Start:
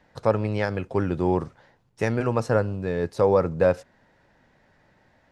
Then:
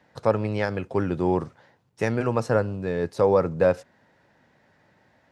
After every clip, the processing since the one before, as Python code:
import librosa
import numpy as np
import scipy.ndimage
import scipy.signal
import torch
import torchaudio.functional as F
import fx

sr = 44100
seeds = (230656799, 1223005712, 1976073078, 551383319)

y = scipy.signal.sosfilt(scipy.signal.butter(2, 87.0, 'highpass', fs=sr, output='sos'), x)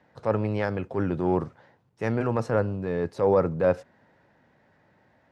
y = fx.high_shelf(x, sr, hz=3300.0, db=-9.5)
y = fx.transient(y, sr, attack_db=-6, sustain_db=1)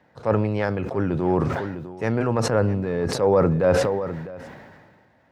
y = x + 10.0 ** (-20.0 / 20.0) * np.pad(x, (int(654 * sr / 1000.0), 0))[:len(x)]
y = fx.sustainer(y, sr, db_per_s=32.0)
y = y * librosa.db_to_amplitude(2.5)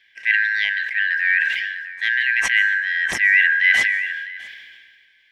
y = fx.band_shuffle(x, sr, order='4123')
y = fx.rev_plate(y, sr, seeds[0], rt60_s=0.9, hf_ratio=0.85, predelay_ms=115, drr_db=19.0)
y = y * librosa.db_to_amplitude(2.5)